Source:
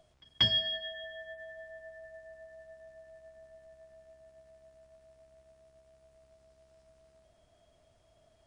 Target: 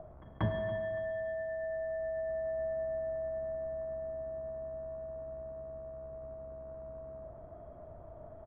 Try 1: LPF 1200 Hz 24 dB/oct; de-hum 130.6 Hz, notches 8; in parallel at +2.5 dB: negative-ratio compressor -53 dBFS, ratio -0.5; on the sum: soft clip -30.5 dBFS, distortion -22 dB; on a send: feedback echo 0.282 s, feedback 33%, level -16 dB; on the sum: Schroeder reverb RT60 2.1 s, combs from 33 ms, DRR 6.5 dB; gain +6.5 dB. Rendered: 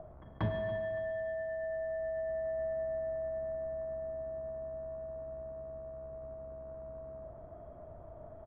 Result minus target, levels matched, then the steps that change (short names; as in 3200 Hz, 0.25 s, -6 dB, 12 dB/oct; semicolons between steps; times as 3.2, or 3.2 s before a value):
soft clip: distortion +11 dB
change: soft clip -23.5 dBFS, distortion -33 dB